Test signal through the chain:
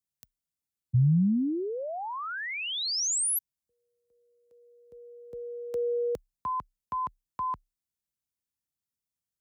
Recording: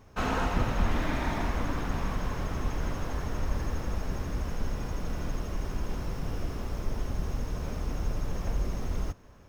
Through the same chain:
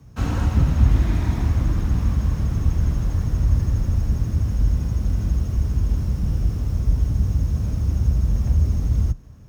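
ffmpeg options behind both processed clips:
ffmpeg -i in.wav -af "bass=frequency=250:gain=15,treble=frequency=4000:gain=8,afreqshift=32,volume=-4dB" out.wav

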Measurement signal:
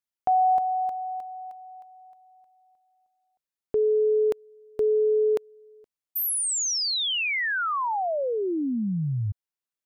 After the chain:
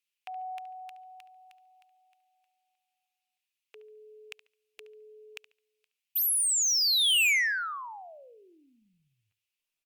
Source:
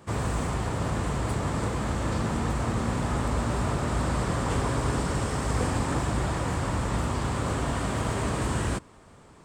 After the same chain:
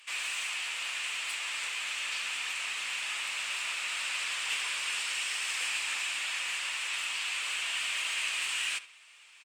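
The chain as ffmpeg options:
ffmpeg -i in.wav -filter_complex "[0:a]highpass=frequency=2600:width_type=q:width=4.6,asoftclip=type=tanh:threshold=-24.5dB,asplit=2[link_01][link_02];[link_02]adelay=71,lowpass=frequency=4300:poles=1,volume=-15dB,asplit=2[link_03][link_04];[link_04]adelay=71,lowpass=frequency=4300:poles=1,volume=0.28,asplit=2[link_05][link_06];[link_06]adelay=71,lowpass=frequency=4300:poles=1,volume=0.28[link_07];[link_03][link_05][link_07]amix=inputs=3:normalize=0[link_08];[link_01][link_08]amix=inputs=2:normalize=0,volume=2dB" -ar 48000 -c:a libopus -b:a 48k out.opus

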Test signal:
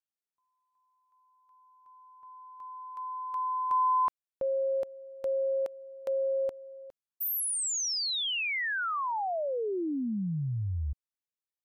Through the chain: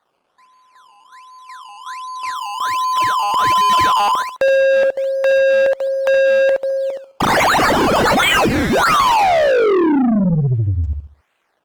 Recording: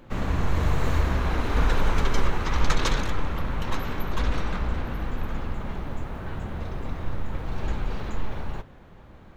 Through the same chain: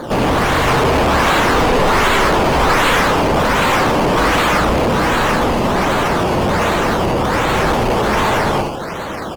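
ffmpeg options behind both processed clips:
ffmpeg -i in.wav -filter_complex "[0:a]aecho=1:1:70|140|210|280:0.501|0.155|0.0482|0.0149,acrossover=split=800[link_01][link_02];[link_02]acrusher=samples=16:mix=1:aa=0.000001:lfo=1:lforange=16:lforate=1.3[link_03];[link_01][link_03]amix=inputs=2:normalize=0,asplit=2[link_04][link_05];[link_05]highpass=frequency=720:poles=1,volume=39dB,asoftclip=type=tanh:threshold=-6dB[link_06];[link_04][link_06]amix=inputs=2:normalize=0,lowpass=frequency=3800:poles=1,volume=-6dB" -ar 48000 -c:a libopus -b:a 20k out.opus

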